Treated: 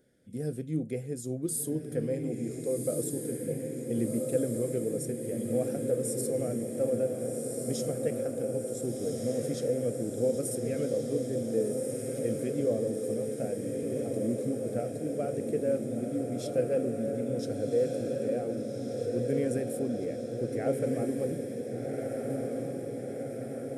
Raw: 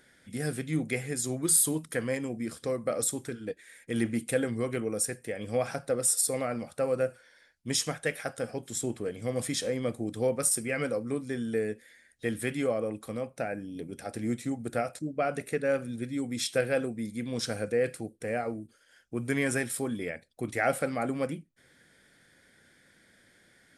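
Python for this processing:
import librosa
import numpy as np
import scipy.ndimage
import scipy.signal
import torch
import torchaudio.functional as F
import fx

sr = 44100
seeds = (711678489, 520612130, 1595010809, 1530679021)

p1 = fx.graphic_eq(x, sr, hz=(125, 250, 500, 1000, 2000, 4000, 8000), db=(5, 3, 9, -12, -9, -6, -4))
p2 = p1 + fx.echo_diffused(p1, sr, ms=1489, feedback_pct=69, wet_db=-3, dry=0)
y = p2 * 10.0 ** (-6.5 / 20.0)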